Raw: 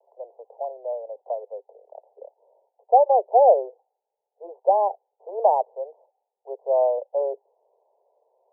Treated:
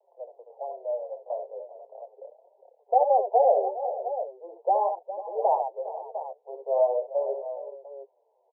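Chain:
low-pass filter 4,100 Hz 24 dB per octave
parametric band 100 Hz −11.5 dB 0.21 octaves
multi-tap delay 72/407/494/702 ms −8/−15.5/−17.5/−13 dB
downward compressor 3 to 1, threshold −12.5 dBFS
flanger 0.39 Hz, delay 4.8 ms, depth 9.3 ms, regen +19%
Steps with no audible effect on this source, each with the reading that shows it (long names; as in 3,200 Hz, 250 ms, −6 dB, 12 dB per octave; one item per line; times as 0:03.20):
low-pass filter 4,100 Hz: nothing at its input above 1,100 Hz
parametric band 100 Hz: nothing at its input below 360 Hz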